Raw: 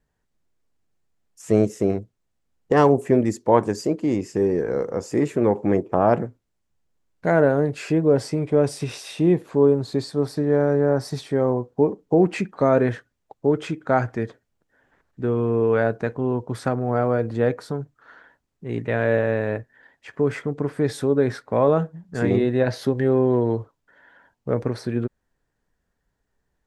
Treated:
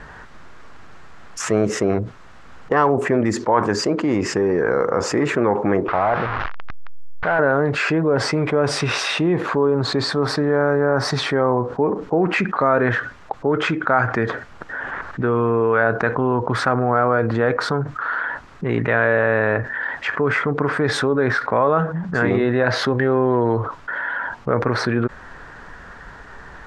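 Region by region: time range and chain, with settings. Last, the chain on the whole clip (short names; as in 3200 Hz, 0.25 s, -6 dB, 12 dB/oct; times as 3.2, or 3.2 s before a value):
5.88–7.39 delta modulation 32 kbps, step -31 dBFS + LPF 2000 Hz + bell 240 Hz -12 dB 2.6 oct
whole clip: LPF 5300 Hz 12 dB/oct; bell 1300 Hz +14 dB 1.5 oct; fast leveller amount 70%; gain -8.5 dB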